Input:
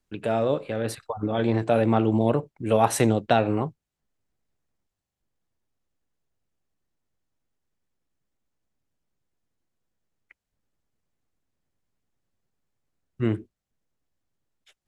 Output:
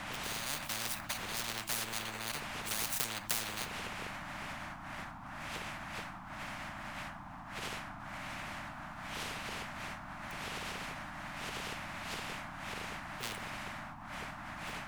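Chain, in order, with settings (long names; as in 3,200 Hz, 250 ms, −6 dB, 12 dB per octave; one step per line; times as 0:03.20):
running median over 41 samples
wind on the microphone 300 Hz −30 dBFS
Chebyshev band-stop filter 210–870 Hz, order 3
parametric band 3,700 Hz −12.5 dB 2.6 octaves
convolution reverb RT60 0.55 s, pre-delay 7 ms, DRR 13.5 dB
downward compressor, threshold −31 dBFS, peak gain reduction 15.5 dB
low-shelf EQ 180 Hz −11.5 dB
every bin compressed towards the loudest bin 10 to 1
level +16 dB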